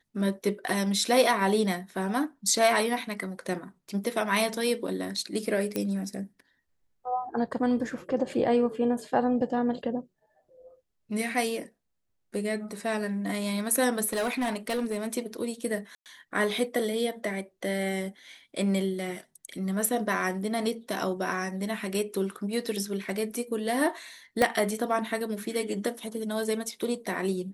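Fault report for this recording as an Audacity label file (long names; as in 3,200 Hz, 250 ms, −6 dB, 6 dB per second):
5.760000	5.760000	click −14 dBFS
14.070000	15.070000	clipping −24.5 dBFS
15.950000	16.060000	drop-out 108 ms
24.420000	24.420000	click −10 dBFS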